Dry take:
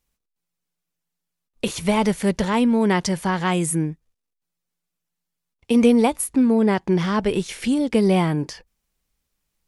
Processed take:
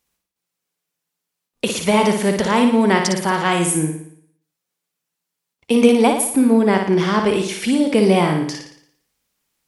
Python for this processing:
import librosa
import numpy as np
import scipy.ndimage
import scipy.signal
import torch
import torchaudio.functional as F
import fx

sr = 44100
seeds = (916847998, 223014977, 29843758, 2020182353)

y = fx.highpass(x, sr, hz=230.0, slope=6)
y = fx.room_flutter(y, sr, wall_m=9.8, rt60_s=0.63)
y = y * 10.0 ** (4.5 / 20.0)